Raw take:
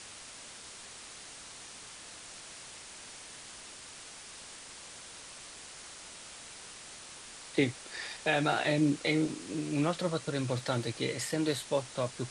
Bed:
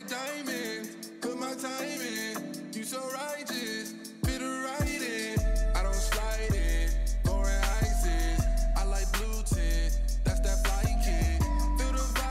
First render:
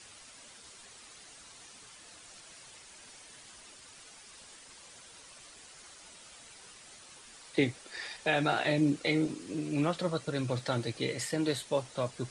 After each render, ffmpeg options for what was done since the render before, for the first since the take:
-af "afftdn=nr=8:nf=-49"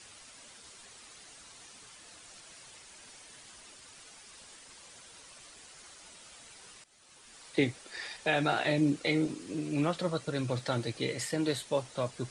-filter_complex "[0:a]asplit=2[s0][s1];[s0]atrim=end=6.84,asetpts=PTS-STARTPTS,afade=t=out:st=6.836:d=0.004:c=hsin:silence=0.133352[s2];[s1]atrim=start=6.84,asetpts=PTS-STARTPTS,afade=t=in:d=0.59:silence=0.133352[s3];[s2][s3]concat=n=2:v=0:a=1"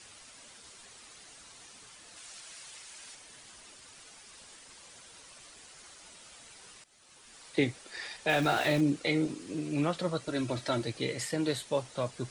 -filter_complex "[0:a]asettb=1/sr,asplit=3[s0][s1][s2];[s0]atrim=end=2.164[s3];[s1]atrim=start=2.16:end=3.15,asetpts=PTS-STARTPTS,afade=t=in:d=0.004:c=qsin,afade=t=out:st=0.986:d=0.004:c=qsin,tiltshelf=f=790:g=-4.5[s4];[s2]atrim=start=3.146[s5];[s3][s4]acrossfade=d=0.004:c1=hsin:c2=qsin[s6];[s6][s5]acrossfade=d=0.004:c1=qsin:c2=hsin,asettb=1/sr,asplit=3[s7][s8][s9];[s7]atrim=end=8.294[s10];[s8]atrim=start=8.29:end=8.81,asetpts=PTS-STARTPTS,afade=t=in:d=0.004:c=qsin,afade=t=out:st=0.516:d=0.004:c=qsin,aeval=exprs='val(0)+0.5*0.0168*sgn(val(0))':c=same[s11];[s9]atrim=start=8.806[s12];[s10][s11]acrossfade=d=0.004:c1=hsin:c2=qsin[s13];[s13][s12]acrossfade=d=0.004:c1=qsin:c2=hsin,asettb=1/sr,asplit=3[s14][s15][s16];[s14]atrim=end=10.274[s17];[s15]atrim=start=10.27:end=10.82,asetpts=PTS-STARTPTS,afade=t=in:d=0.004:c=qsin,afade=t=out:st=0.546:d=0.004:c=qsin,aecho=1:1:3.1:0.65,atrim=end_sample=24255[s18];[s16]atrim=start=10.816[s19];[s17][s18]acrossfade=d=0.004:c1=hsin:c2=qsin[s20];[s20][s19]acrossfade=d=0.004:c1=qsin:c2=hsin"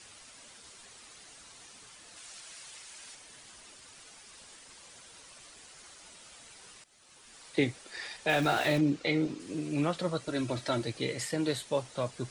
-filter_complex "[0:a]asettb=1/sr,asplit=3[s0][s1][s2];[s0]atrim=end=8.784[s3];[s1]atrim=start=8.78:end=9.4,asetpts=PTS-STARTPTS,afade=t=in:d=0.004:c=qsin,afade=t=out:st=0.616:d=0.004:c=qsin,lowpass=5900[s4];[s2]atrim=start=9.396[s5];[s3][s4]acrossfade=d=0.004:c1=hsin:c2=qsin[s6];[s6][s5]acrossfade=d=0.004:c1=qsin:c2=hsin"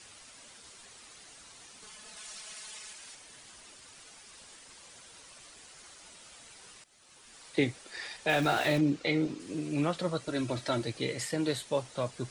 -filter_complex "[0:a]asettb=1/sr,asplit=3[s0][s1][s2];[s0]atrim=end=1.824[s3];[s1]atrim=start=1.82:end=2.93,asetpts=PTS-STARTPTS,afade=t=in:d=0.004:c=qsin,afade=t=out:st=1.106:d=0.004:c=qsin,aecho=1:1:4.7:0.99,atrim=end_sample=48951[s4];[s2]atrim=start=2.926[s5];[s3][s4]acrossfade=d=0.004:c1=hsin:c2=qsin[s6];[s6][s5]acrossfade=d=0.004:c1=qsin:c2=hsin"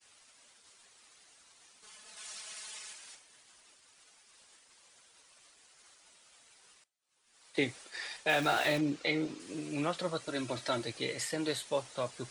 -af "agate=range=0.0224:threshold=0.00562:ratio=3:detection=peak,lowshelf=f=320:g=-9"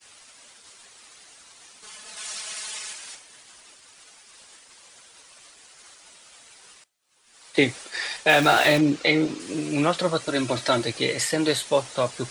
-af "volume=3.76"

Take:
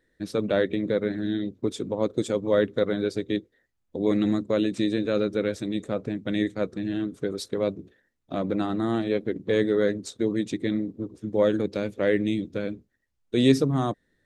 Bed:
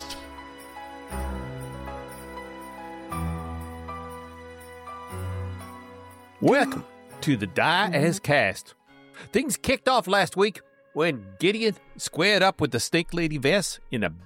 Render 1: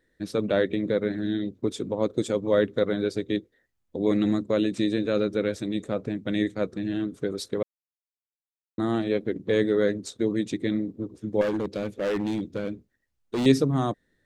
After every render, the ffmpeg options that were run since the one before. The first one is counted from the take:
-filter_complex "[0:a]asettb=1/sr,asplit=3[s0][s1][s2];[s0]atrim=end=11.414[s3];[s1]atrim=start=11.41:end=13.46,asetpts=PTS-STARTPTS,afade=t=in:d=0.004:c=qsin,afade=t=out:st=2.046:d=0.004:c=qsin,asoftclip=type=hard:threshold=0.0708[s4];[s2]atrim=start=13.456[s5];[s3][s4]acrossfade=d=0.004:c1=hsin:c2=qsin[s6];[s6][s5]acrossfade=d=0.004:c1=qsin:c2=hsin,asplit=3[s7][s8][s9];[s7]atrim=end=7.63,asetpts=PTS-STARTPTS,afade=t=out:st=7.626:d=0.004:c=hsin[s10];[s8]atrim=start=7.63:end=8.78,asetpts=PTS-STARTPTS,volume=0[s11];[s9]atrim=start=8.78,asetpts=PTS-STARTPTS,afade=t=in:d=0.004:c=hsin[s12];[s10][s11][s12]concat=n=3:v=0:a=1"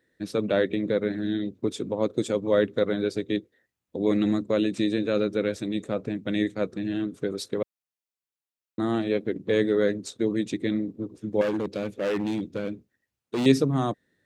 -af "highpass=87,equalizer=f=2600:t=o:w=0.26:g=3"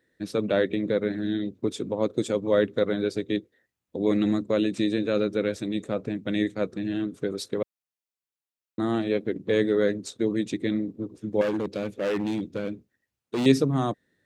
-af anull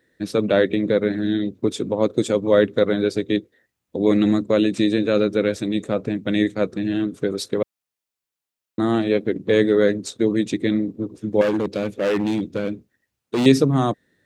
-af "volume=2,alimiter=limit=0.794:level=0:latency=1"

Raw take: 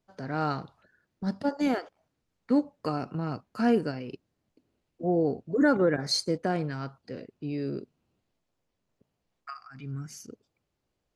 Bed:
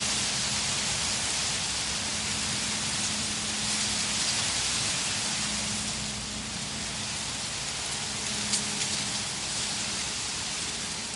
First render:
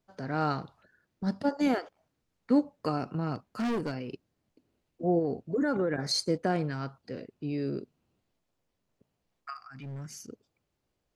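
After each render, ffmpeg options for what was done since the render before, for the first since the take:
-filter_complex "[0:a]asettb=1/sr,asplit=3[s0][s1][s2];[s0]atrim=end=3.354[s3];[s1]atrim=start=3.35:end=3.94,asetpts=PTS-STARTPTS,afade=t=in:d=0.004:c=qsin,afade=t=out:st=0.586:d=0.004:c=qsin,volume=23.7,asoftclip=hard,volume=0.0422[s4];[s2]atrim=start=3.936[s5];[s3][s4]acrossfade=d=0.004:c1=hsin:c2=qsin[s6];[s6][s5]acrossfade=d=0.004:c1=qsin:c2=hsin,asplit=3[s7][s8][s9];[s7]afade=t=out:st=5.18:d=0.02[s10];[s8]acompressor=threshold=0.0631:ratio=6:attack=3.2:release=140:knee=1:detection=peak,afade=t=in:st=5.18:d=0.02,afade=t=out:st=6.16:d=0.02[s11];[s9]afade=t=in:st=6.16:d=0.02[s12];[s10][s11][s12]amix=inputs=3:normalize=0,asettb=1/sr,asplit=3[s13][s14][s15];[s13]atrim=end=9.564[s16];[s14]atrim=start=9.56:end=10.15,asetpts=PTS-STARTPTS,afade=t=in:d=0.004:c=qsin,afade=t=out:st=0.586:d=0.004:c=qsin,asoftclip=type=hard:threshold=0.0141[s17];[s15]atrim=start=10.146[s18];[s16][s17]acrossfade=d=0.004:c1=hsin:c2=qsin[s19];[s19][s18]acrossfade=d=0.004:c1=qsin:c2=hsin"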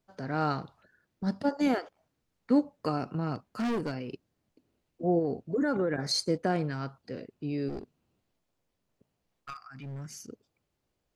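-filter_complex "[0:a]asplit=3[s0][s1][s2];[s0]afade=t=out:st=7.68:d=0.02[s3];[s1]aeval=exprs='clip(val(0),-1,0.00944)':c=same,afade=t=in:st=7.68:d=0.02,afade=t=out:st=9.65:d=0.02[s4];[s2]afade=t=in:st=9.65:d=0.02[s5];[s3][s4][s5]amix=inputs=3:normalize=0"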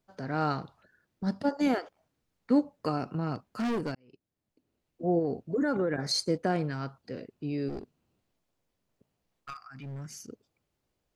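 -filter_complex "[0:a]asplit=2[s0][s1];[s0]atrim=end=3.95,asetpts=PTS-STARTPTS,afade=t=out:st=3.946:d=0.004:c=hsin[s2];[s1]atrim=start=3.95,asetpts=PTS-STARTPTS,afade=t=in:d=1.25[s3];[s2][s3]concat=n=2:v=0:a=1"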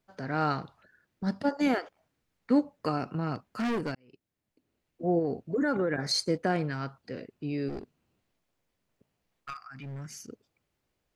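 -af "equalizer=f=2000:t=o:w=1.3:g=4"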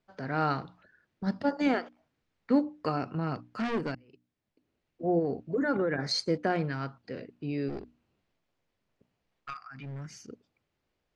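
-af "lowpass=5200,bandreject=f=60:t=h:w=6,bandreject=f=120:t=h:w=6,bandreject=f=180:t=h:w=6,bandreject=f=240:t=h:w=6,bandreject=f=300:t=h:w=6"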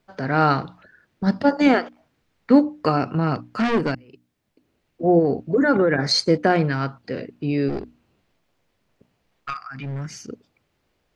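-af "volume=3.35"

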